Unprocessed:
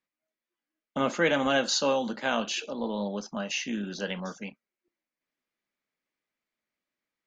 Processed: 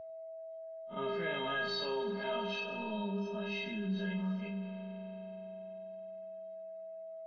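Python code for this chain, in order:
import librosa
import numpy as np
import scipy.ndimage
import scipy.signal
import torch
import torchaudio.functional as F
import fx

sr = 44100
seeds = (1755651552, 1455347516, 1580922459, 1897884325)

p1 = fx.spec_blur(x, sr, span_ms=80.0)
p2 = scipy.signal.sosfilt(scipy.signal.butter(6, 4200.0, 'lowpass', fs=sr, output='sos'), p1)
p3 = fx.peak_eq(p2, sr, hz=1800.0, db=-2.0, octaves=0.77)
p4 = fx.hum_notches(p3, sr, base_hz=50, count=8)
p5 = fx.stiff_resonator(p4, sr, f0_hz=190.0, decay_s=0.55, stiffness=0.03)
p6 = fx.rev_spring(p5, sr, rt60_s=3.3, pass_ms=(37,), chirp_ms=30, drr_db=9.0)
p7 = p6 + 10.0 ** (-66.0 / 20.0) * np.sin(2.0 * np.pi * 650.0 * np.arange(len(p6)) / sr)
p8 = fx.peak_eq(p7, sr, hz=73.0, db=9.5, octaves=2.0)
p9 = p8 + fx.echo_feedback(p8, sr, ms=97, feedback_pct=57, wet_db=-17.0, dry=0)
p10 = fx.env_flatten(p9, sr, amount_pct=50)
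y = p10 * librosa.db_to_amplitude(6.0)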